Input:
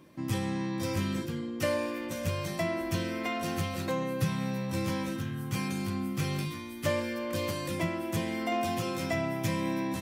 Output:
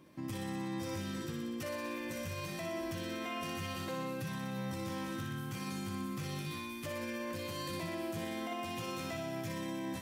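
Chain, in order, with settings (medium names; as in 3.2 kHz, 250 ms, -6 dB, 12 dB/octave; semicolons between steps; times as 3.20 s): peak limiter -28 dBFS, peak gain reduction 11 dB; thinning echo 61 ms, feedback 78%, high-pass 850 Hz, level -4.5 dB; trim -4 dB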